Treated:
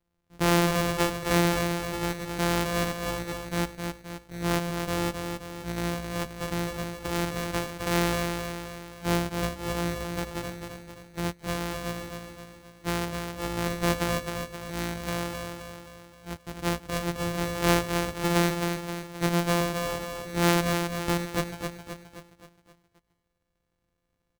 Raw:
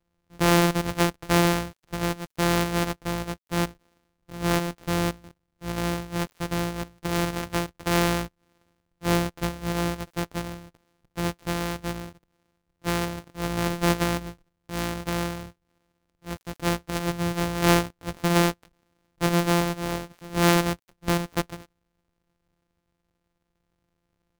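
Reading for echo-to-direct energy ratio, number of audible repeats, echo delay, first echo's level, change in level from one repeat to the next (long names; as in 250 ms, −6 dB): −4.0 dB, 6, 263 ms, −5.5 dB, −6.0 dB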